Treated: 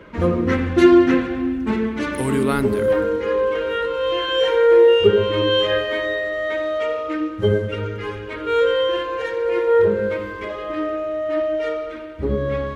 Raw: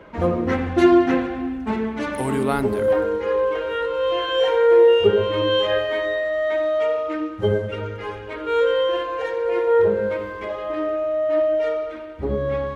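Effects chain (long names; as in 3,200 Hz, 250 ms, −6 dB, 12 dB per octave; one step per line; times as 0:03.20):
parametric band 750 Hz −10 dB 0.65 octaves
on a send: bucket-brigade delay 168 ms, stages 1,024, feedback 77%, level −21 dB
on the sum: level +3.5 dB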